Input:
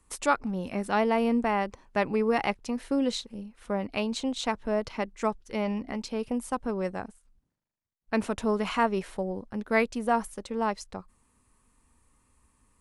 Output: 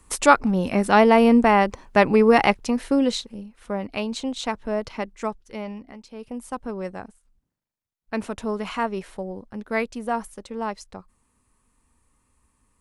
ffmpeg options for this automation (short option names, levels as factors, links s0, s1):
-af "volume=10,afade=t=out:st=2.42:d=1.04:silence=0.398107,afade=t=out:st=4.99:d=1.05:silence=0.237137,afade=t=in:st=6.04:d=0.53:silence=0.316228"